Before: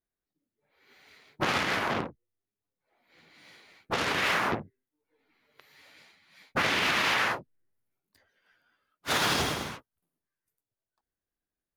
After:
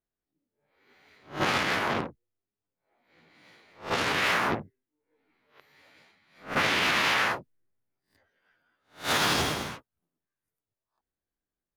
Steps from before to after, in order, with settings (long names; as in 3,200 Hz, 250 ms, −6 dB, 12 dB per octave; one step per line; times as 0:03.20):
peak hold with a rise ahead of every peak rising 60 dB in 0.32 s
one half of a high-frequency compander decoder only